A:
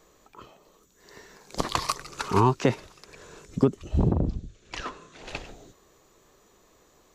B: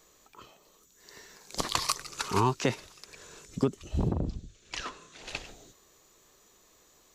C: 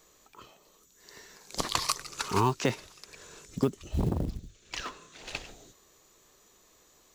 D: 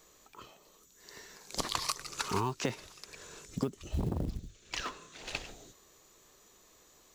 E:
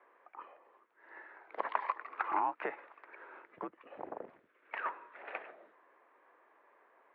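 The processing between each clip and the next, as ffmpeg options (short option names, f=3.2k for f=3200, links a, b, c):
-af "highshelf=f=2.2k:g=10,volume=-6dB"
-af "acrusher=bits=7:mode=log:mix=0:aa=0.000001"
-af "acompressor=threshold=-29dB:ratio=4"
-af "highpass=f=570:t=q:w=0.5412,highpass=f=570:t=q:w=1.307,lowpass=f=2.1k:t=q:w=0.5176,lowpass=f=2.1k:t=q:w=0.7071,lowpass=f=2.1k:t=q:w=1.932,afreqshift=-76,volume=3.5dB"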